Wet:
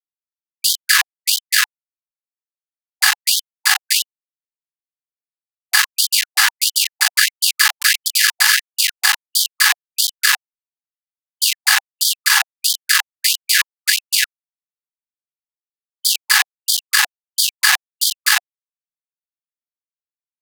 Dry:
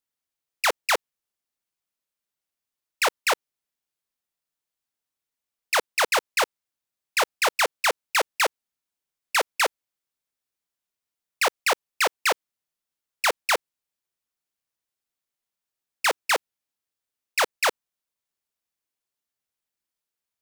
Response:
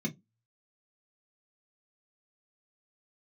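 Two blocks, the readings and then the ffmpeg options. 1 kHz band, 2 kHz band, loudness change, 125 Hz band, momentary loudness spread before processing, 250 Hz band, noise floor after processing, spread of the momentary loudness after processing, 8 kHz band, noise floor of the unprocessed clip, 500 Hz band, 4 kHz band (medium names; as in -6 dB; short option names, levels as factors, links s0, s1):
-0.5 dB, +10.0 dB, +9.0 dB, no reading, 4 LU, under -40 dB, under -85 dBFS, 5 LU, +15.5 dB, under -85 dBFS, under -25 dB, +14.0 dB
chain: -filter_complex "[1:a]atrim=start_sample=2205,asetrate=33957,aresample=44100[s0];[0:a][s0]afir=irnorm=-1:irlink=0,acrossover=split=500|3500[s1][s2][s3];[s2]asoftclip=type=tanh:threshold=0.0944[s4];[s1][s4][s3]amix=inputs=3:normalize=0,superequalizer=9b=0.355:11b=2.24:14b=2:16b=3.16,aecho=1:1:633:0.596,areverse,acompressor=threshold=0.0251:ratio=8,areverse,acrusher=bits=4:mix=0:aa=0.000001,apsyclip=25.1,afftfilt=real='re*gte(b*sr/1024,720*pow(3100/720,0.5+0.5*sin(2*PI*1.5*pts/sr)))':imag='im*gte(b*sr/1024,720*pow(3100/720,0.5+0.5*sin(2*PI*1.5*pts/sr)))':win_size=1024:overlap=0.75,volume=0.631"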